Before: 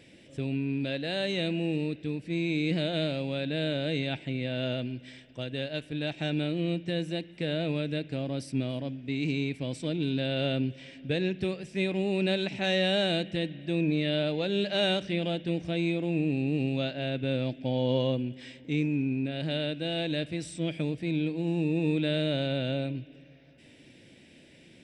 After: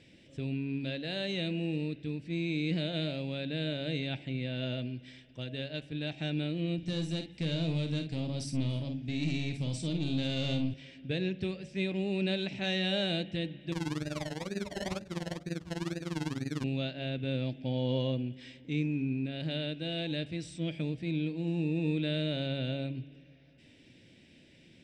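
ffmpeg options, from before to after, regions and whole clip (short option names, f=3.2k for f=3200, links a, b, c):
-filter_complex "[0:a]asettb=1/sr,asplit=3[a][b][c];[a]atrim=end=6.784[d];[b]atrim=start=6.78:end=10.74,asetpts=PTS-STARTPTS,afade=t=in:d=0.004:c=qsin,afade=t=out:st=3.956:d=0.004:c=qsin,bass=f=250:g=6,treble=f=4k:g=11,aeval=exprs='(tanh(12.6*val(0)+0.2)-tanh(0.2))/12.6':c=same,asplit=2[e][f];[f]adelay=49,volume=-7.5dB[g];[e][g]amix=inputs=2:normalize=0,atrim=end_sample=174636[h];[c]atrim=start=10.736[i];[d][h]acrossfade=d=0.004:c1=hsin:c2=qsin[j];[j][i]acrossfade=d=0.004:c1=qsin:c2=hsin,asettb=1/sr,asplit=3[k][l][m];[k]atrim=end=13.724[n];[l]atrim=start=13.72:end=16.64,asetpts=PTS-STARTPTS,afade=t=in:d=0.004:c=qsin,afade=t=out:st=2.916:d=0.004:c=qsin,lowpass=f=2.2k:w=0.5412,lowpass=f=2.2k:w=1.3066,acrusher=samples=29:mix=1:aa=0.000001:lfo=1:lforange=17.4:lforate=2.1,tremolo=f=20:d=0.889[o];[m]atrim=start=16.636[p];[n][o]acrossfade=d=0.004:c1=hsin:c2=qsin[q];[q][p]acrossfade=d=0.004:c1=qsin:c2=hsin,lowpass=6k,equalizer=f=860:w=0.31:g=-6.5,bandreject=f=70.14:t=h:w=4,bandreject=f=140.28:t=h:w=4,bandreject=f=210.42:t=h:w=4,bandreject=f=280.56:t=h:w=4,bandreject=f=350.7:t=h:w=4,bandreject=f=420.84:t=h:w=4,bandreject=f=490.98:t=h:w=4,bandreject=f=561.12:t=h:w=4,bandreject=f=631.26:t=h:w=4,bandreject=f=701.4:t=h:w=4,bandreject=f=771.54:t=h:w=4,bandreject=f=841.68:t=h:w=4"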